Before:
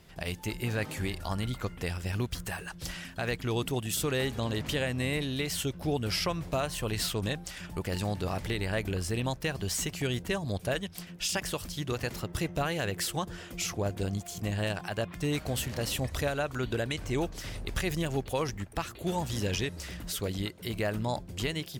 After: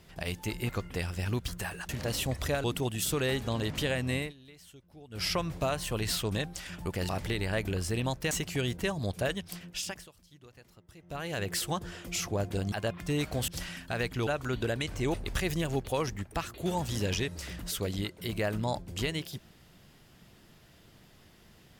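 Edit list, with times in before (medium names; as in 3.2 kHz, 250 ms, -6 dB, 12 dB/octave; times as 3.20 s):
0.69–1.56 s: delete
2.76–3.55 s: swap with 15.62–16.37 s
5.07–6.18 s: dip -21.5 dB, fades 0.17 s
8.00–8.29 s: delete
9.51–9.77 s: delete
11.06–12.95 s: dip -22 dB, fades 0.49 s
14.18–14.86 s: delete
17.24–17.55 s: delete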